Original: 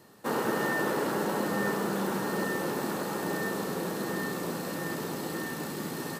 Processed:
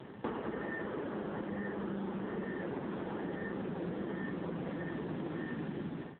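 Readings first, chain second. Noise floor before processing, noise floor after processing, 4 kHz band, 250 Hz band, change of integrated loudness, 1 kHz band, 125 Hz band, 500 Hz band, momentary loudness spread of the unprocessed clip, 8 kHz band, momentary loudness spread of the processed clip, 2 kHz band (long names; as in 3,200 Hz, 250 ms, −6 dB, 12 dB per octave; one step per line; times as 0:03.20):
−37 dBFS, −47 dBFS, −16.0 dB, −5.5 dB, −8.0 dB, −12.0 dB, −4.0 dB, −8.5 dB, 6 LU, below −40 dB, 1 LU, −11.0 dB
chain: fade-out on the ending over 0.78 s
low-shelf EQ 360 Hz +6.5 dB
in parallel at −2 dB: brickwall limiter −23.5 dBFS, peak gain reduction 9 dB
on the sum: downward compressor 20 to 1, threshold −35 dBFS, peak gain reduction 17 dB
level +2 dB
AMR narrowband 5.9 kbit/s 8,000 Hz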